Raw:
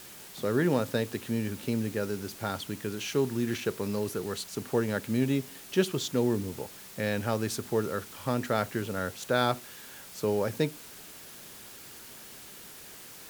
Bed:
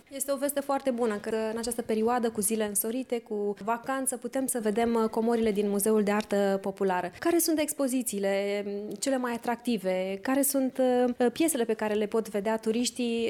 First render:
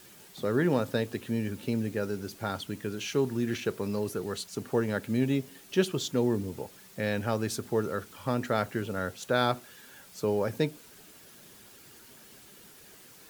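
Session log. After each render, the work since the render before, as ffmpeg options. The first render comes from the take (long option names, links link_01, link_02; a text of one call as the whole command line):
ffmpeg -i in.wav -af "afftdn=noise_reduction=7:noise_floor=-48" out.wav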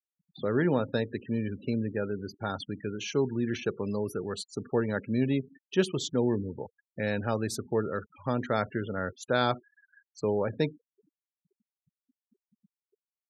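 ffmpeg -i in.wav -af "afftfilt=real='re*gte(hypot(re,im),0.0126)':imag='im*gte(hypot(re,im),0.0126)':win_size=1024:overlap=0.75" out.wav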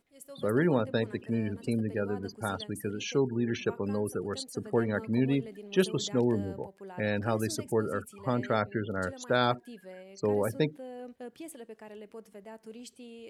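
ffmpeg -i in.wav -i bed.wav -filter_complex "[1:a]volume=-18.5dB[link_01];[0:a][link_01]amix=inputs=2:normalize=0" out.wav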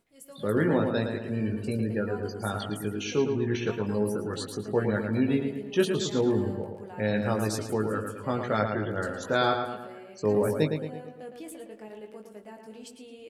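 ffmpeg -i in.wav -filter_complex "[0:a]asplit=2[link_01][link_02];[link_02]adelay=19,volume=-5dB[link_03];[link_01][link_03]amix=inputs=2:normalize=0,asplit=2[link_04][link_05];[link_05]adelay=111,lowpass=frequency=3400:poles=1,volume=-5.5dB,asplit=2[link_06][link_07];[link_07]adelay=111,lowpass=frequency=3400:poles=1,volume=0.51,asplit=2[link_08][link_09];[link_09]adelay=111,lowpass=frequency=3400:poles=1,volume=0.51,asplit=2[link_10][link_11];[link_11]adelay=111,lowpass=frequency=3400:poles=1,volume=0.51,asplit=2[link_12][link_13];[link_13]adelay=111,lowpass=frequency=3400:poles=1,volume=0.51,asplit=2[link_14][link_15];[link_15]adelay=111,lowpass=frequency=3400:poles=1,volume=0.51[link_16];[link_06][link_08][link_10][link_12][link_14][link_16]amix=inputs=6:normalize=0[link_17];[link_04][link_17]amix=inputs=2:normalize=0" out.wav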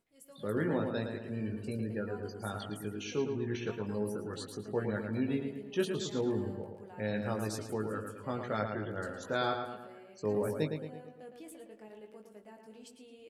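ffmpeg -i in.wav -af "volume=-7.5dB" out.wav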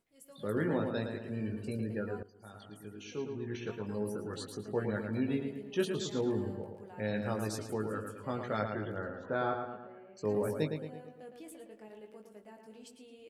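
ffmpeg -i in.wav -filter_complex "[0:a]asettb=1/sr,asplit=3[link_01][link_02][link_03];[link_01]atrim=end=8.984[link_04];[link_02]atrim=start=8.98:end=10.17,asetpts=PTS-STARTPTS,afade=type=in:duration=0.004:curve=qsin,afade=type=out:start_time=1.186:duration=0.004:curve=qsin,lowpass=1700[link_05];[link_03]atrim=start=10.166[link_06];[link_04][link_05]acrossfade=duration=0.004:curve1=hsin:curve2=qsin[link_07];[link_07][link_06]acrossfade=duration=0.004:curve1=qsin:curve2=hsin,asplit=2[link_08][link_09];[link_08]atrim=end=2.23,asetpts=PTS-STARTPTS,afade=type=out:start_time=2.226:duration=0.004:curve=hsin:silence=0.105925[link_10];[link_09]atrim=start=2.23,asetpts=PTS-STARTPTS,afade=type=in:duration=2.07:silence=0.105925[link_11];[link_10][link_11]concat=n=2:v=0:a=1" out.wav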